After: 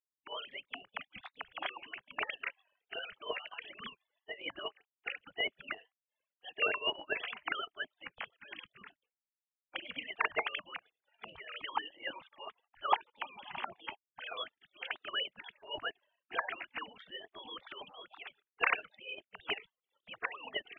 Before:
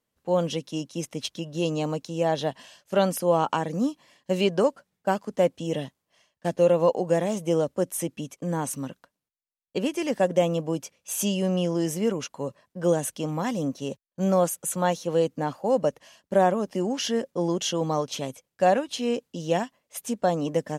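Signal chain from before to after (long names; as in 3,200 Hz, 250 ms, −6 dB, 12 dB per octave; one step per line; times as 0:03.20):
three sine waves on the formant tracks
low-shelf EQ 350 Hz −3 dB
gate on every frequency bin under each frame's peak −30 dB weak
0:11.69–0:14.33: parametric band 850 Hz +13.5 dB 0.68 octaves
level +13 dB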